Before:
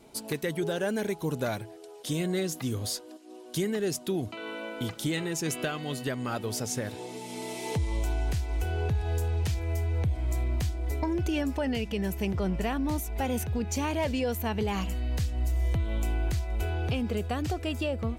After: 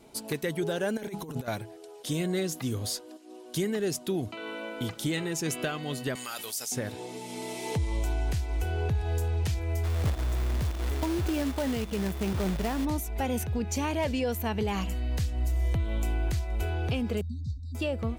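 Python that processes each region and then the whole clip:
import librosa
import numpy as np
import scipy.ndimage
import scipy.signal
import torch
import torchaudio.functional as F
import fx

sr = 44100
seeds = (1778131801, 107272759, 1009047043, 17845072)

y = fx.chain(x, sr, fx.hum_notches(base_hz=50, count=4),
    fx.over_compress(threshold_db=-35.0, ratio=-0.5), at=(0.97, 1.48))
y = fx.chain(y, sr, fx.differentiator(),
    fx.env_flatten(amount_pct=70), at=(6.15, 6.72))
y = fx.high_shelf(y, sr, hz=2400.0, db=-11.5, at=(9.83, 12.84), fade=0.02)
y = fx.quant_companded(y, sr, bits=4, at=(9.83, 12.84), fade=0.02)
y = fx.dmg_tone(y, sr, hz=3500.0, level_db=-57.0, at=(9.83, 12.84), fade=0.02)
y = fx.chain(y, sr, fx.brickwall_bandstop(low_hz=260.0, high_hz=3600.0),
    fx.spacing_loss(db_at_10k=26), at=(17.21, 17.75))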